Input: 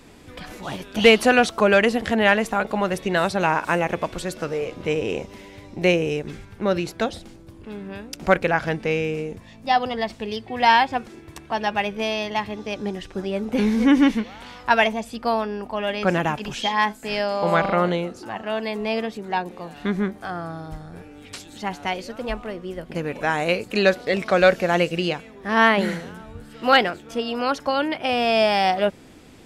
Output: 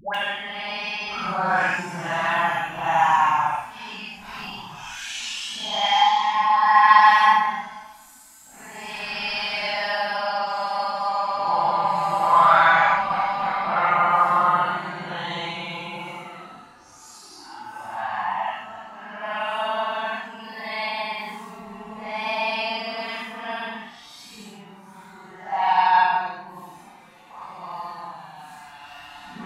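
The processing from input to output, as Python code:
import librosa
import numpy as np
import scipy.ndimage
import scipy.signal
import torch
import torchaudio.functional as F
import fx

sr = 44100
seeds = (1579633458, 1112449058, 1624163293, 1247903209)

y = fx.low_shelf_res(x, sr, hz=650.0, db=-11.0, q=3.0)
y = fx.paulstretch(y, sr, seeds[0], factor=7.4, window_s=0.05, from_s=15.88)
y = fx.dispersion(y, sr, late='highs', ms=147.0, hz=780.0)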